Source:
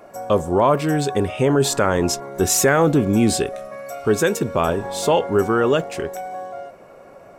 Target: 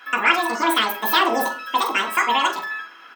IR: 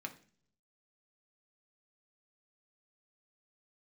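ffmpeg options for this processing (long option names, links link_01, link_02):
-filter_complex "[0:a]highpass=frequency=330:poles=1,aecho=1:1:99:0.266[link_01];[1:a]atrim=start_sample=2205,asetrate=23814,aresample=44100[link_02];[link_01][link_02]afir=irnorm=-1:irlink=0,asetrate=103194,aresample=44100,volume=-2dB"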